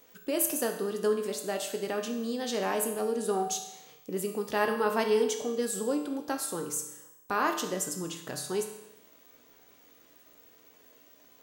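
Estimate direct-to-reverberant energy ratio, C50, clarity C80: 3.0 dB, 7.0 dB, 9.5 dB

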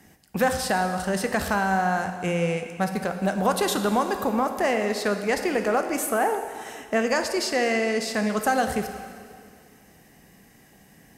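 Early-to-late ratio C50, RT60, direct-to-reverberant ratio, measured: 7.5 dB, 2.1 s, 6.0 dB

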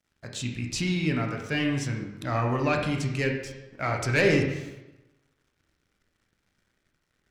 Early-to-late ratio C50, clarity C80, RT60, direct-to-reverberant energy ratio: 4.5 dB, 6.5 dB, 1.0 s, 1.5 dB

